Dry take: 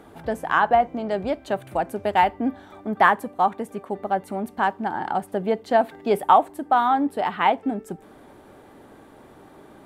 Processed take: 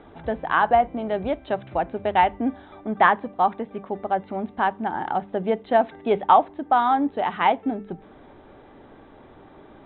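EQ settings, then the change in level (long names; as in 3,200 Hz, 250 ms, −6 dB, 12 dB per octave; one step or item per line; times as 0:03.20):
Chebyshev low-pass filter 3,900 Hz, order 8
low-shelf EQ 62 Hz +11.5 dB
mains-hum notches 50/100/150/200 Hz
0.0 dB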